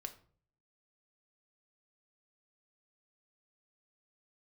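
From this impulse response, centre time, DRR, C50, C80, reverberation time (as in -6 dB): 7 ms, 5.5 dB, 13.5 dB, 18.0 dB, 0.50 s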